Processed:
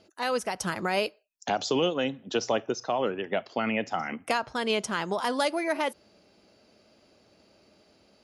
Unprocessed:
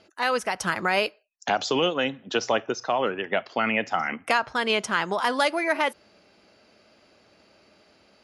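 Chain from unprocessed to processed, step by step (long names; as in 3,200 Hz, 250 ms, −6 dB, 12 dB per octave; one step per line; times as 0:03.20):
parametric band 1,700 Hz −7.5 dB 2.2 octaves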